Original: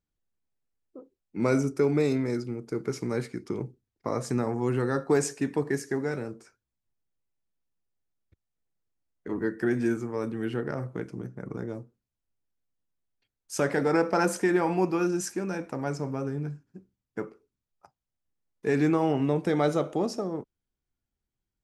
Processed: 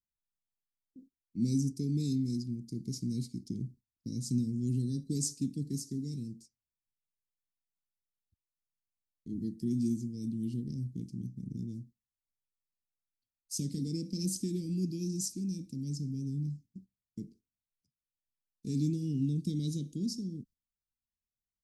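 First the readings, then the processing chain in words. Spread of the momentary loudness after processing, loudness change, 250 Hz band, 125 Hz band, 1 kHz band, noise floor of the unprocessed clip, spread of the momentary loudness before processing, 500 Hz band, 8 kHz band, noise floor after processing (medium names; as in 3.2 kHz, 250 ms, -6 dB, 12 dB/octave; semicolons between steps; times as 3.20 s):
14 LU, -6.5 dB, -5.0 dB, -1.0 dB, under -40 dB, under -85 dBFS, 14 LU, -20.5 dB, -1.0 dB, under -85 dBFS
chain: gate -50 dBFS, range -13 dB; elliptic band-stop 240–4400 Hz, stop band 60 dB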